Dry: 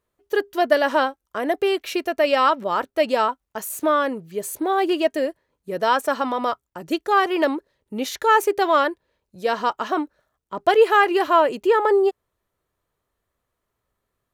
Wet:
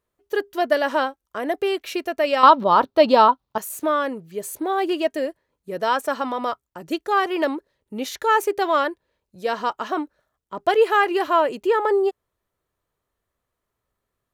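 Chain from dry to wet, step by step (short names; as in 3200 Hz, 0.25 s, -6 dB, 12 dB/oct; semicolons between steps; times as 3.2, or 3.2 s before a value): 2.43–3.58 graphic EQ 125/250/500/1000/2000/4000/8000 Hz +12/+6/+3/+11/-4/+12/-9 dB; gain -2 dB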